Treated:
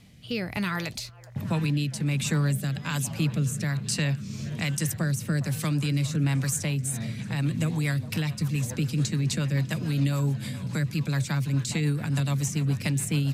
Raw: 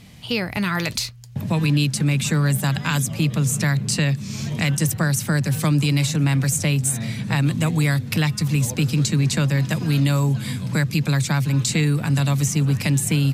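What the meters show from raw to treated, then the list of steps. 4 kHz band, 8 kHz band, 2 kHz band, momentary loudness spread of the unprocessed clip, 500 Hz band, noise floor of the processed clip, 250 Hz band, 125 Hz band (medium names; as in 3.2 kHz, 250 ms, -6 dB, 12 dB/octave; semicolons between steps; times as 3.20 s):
-8.0 dB, -7.5 dB, -8.0 dB, 5 LU, -7.0 dB, -40 dBFS, -6.5 dB, -6.5 dB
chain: repeats whose band climbs or falls 410 ms, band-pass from 780 Hz, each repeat 0.7 oct, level -12 dB; rotary cabinet horn 1.2 Hz, later 7 Hz, at 6.64 s; trim -5 dB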